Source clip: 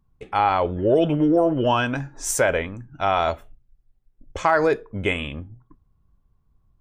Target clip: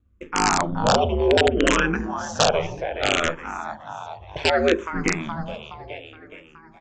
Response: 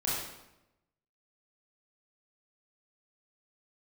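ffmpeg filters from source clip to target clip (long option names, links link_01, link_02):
-filter_complex "[0:a]aeval=exprs='val(0)*sin(2*PI*78*n/s)':channel_layout=same,bandreject=frequency=50:width_type=h:width=6,bandreject=frequency=100:width_type=h:width=6,bandreject=frequency=150:width_type=h:width=6,bandreject=frequency=200:width_type=h:width=6,bandreject=frequency=250:width_type=h:width=6,bandreject=frequency=300:width_type=h:width=6,bandreject=frequency=350:width_type=h:width=6,bandreject=frequency=400:width_type=h:width=6,bandreject=frequency=450:width_type=h:width=6,asplit=2[link_01][link_02];[link_02]asplit=6[link_03][link_04][link_05][link_06][link_07][link_08];[link_03]adelay=420,afreqshift=52,volume=-12dB[link_09];[link_04]adelay=840,afreqshift=104,volume=-17.4dB[link_10];[link_05]adelay=1260,afreqshift=156,volume=-22.7dB[link_11];[link_06]adelay=1680,afreqshift=208,volume=-28.1dB[link_12];[link_07]adelay=2100,afreqshift=260,volume=-33.4dB[link_13];[link_08]adelay=2520,afreqshift=312,volume=-38.8dB[link_14];[link_09][link_10][link_11][link_12][link_13][link_14]amix=inputs=6:normalize=0[link_15];[link_01][link_15]amix=inputs=2:normalize=0,acrossover=split=4100[link_16][link_17];[link_17]acompressor=threshold=-49dB:ratio=4:attack=1:release=60[link_18];[link_16][link_18]amix=inputs=2:normalize=0,aresample=16000,aeval=exprs='(mod(4.47*val(0)+1,2)-1)/4.47':channel_layout=same,aresample=44100,asplit=2[link_19][link_20];[link_20]afreqshift=-0.65[link_21];[link_19][link_21]amix=inputs=2:normalize=1,volume=7dB"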